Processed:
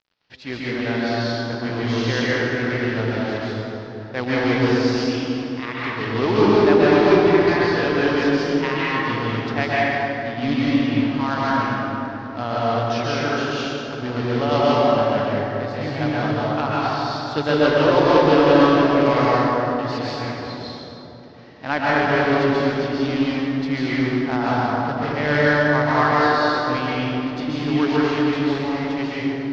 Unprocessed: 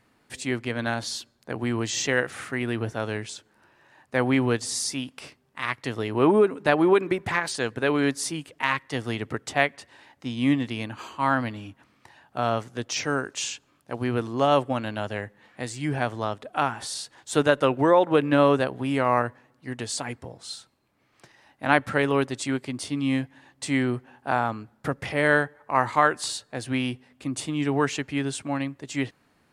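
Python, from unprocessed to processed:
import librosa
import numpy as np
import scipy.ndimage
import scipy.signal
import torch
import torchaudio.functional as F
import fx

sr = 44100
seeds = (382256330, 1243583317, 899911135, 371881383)

p1 = fx.quant_companded(x, sr, bits=4)
p2 = scipy.signal.sosfilt(scipy.signal.butter(8, 5200.0, 'lowpass', fs=sr, output='sos'), p1)
p3 = p2 + fx.echo_wet_lowpass(p2, sr, ms=222, feedback_pct=66, hz=700.0, wet_db=-6.5, dry=0)
p4 = fx.rev_plate(p3, sr, seeds[0], rt60_s=2.8, hf_ratio=0.6, predelay_ms=115, drr_db=-7.5)
y = p4 * librosa.db_to_amplitude(-3.5)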